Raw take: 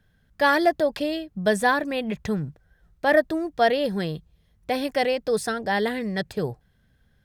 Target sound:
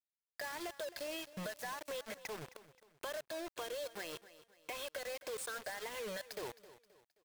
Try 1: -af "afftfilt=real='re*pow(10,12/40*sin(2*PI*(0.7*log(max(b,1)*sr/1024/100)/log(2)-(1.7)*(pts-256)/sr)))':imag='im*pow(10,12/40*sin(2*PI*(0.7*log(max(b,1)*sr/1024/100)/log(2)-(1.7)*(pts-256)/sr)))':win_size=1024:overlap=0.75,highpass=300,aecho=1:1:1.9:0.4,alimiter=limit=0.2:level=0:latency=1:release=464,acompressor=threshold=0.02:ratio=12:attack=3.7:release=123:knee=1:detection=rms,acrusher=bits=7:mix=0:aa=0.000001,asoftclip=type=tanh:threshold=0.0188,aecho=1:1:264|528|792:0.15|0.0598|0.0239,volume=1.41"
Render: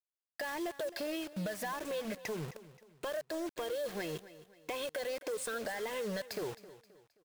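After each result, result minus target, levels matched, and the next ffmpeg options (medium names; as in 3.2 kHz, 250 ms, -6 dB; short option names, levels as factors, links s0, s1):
compression: peak gain reduction -7 dB; 250 Hz band +5.0 dB
-af "afftfilt=real='re*pow(10,12/40*sin(2*PI*(0.7*log(max(b,1)*sr/1024/100)/log(2)-(1.7)*(pts-256)/sr)))':imag='im*pow(10,12/40*sin(2*PI*(0.7*log(max(b,1)*sr/1024/100)/log(2)-(1.7)*(pts-256)/sr)))':win_size=1024:overlap=0.75,highpass=300,aecho=1:1:1.9:0.4,alimiter=limit=0.2:level=0:latency=1:release=464,acompressor=threshold=0.00841:ratio=12:attack=3.7:release=123:knee=1:detection=rms,acrusher=bits=7:mix=0:aa=0.000001,asoftclip=type=tanh:threshold=0.0188,aecho=1:1:264|528|792:0.15|0.0598|0.0239,volume=1.41"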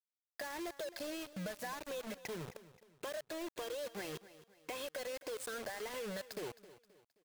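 250 Hz band +4.5 dB
-af "afftfilt=real='re*pow(10,12/40*sin(2*PI*(0.7*log(max(b,1)*sr/1024/100)/log(2)-(1.7)*(pts-256)/sr)))':imag='im*pow(10,12/40*sin(2*PI*(0.7*log(max(b,1)*sr/1024/100)/log(2)-(1.7)*(pts-256)/sr)))':win_size=1024:overlap=0.75,highpass=610,aecho=1:1:1.9:0.4,alimiter=limit=0.2:level=0:latency=1:release=464,acompressor=threshold=0.00841:ratio=12:attack=3.7:release=123:knee=1:detection=rms,acrusher=bits=7:mix=0:aa=0.000001,asoftclip=type=tanh:threshold=0.0188,aecho=1:1:264|528|792:0.15|0.0598|0.0239,volume=1.41"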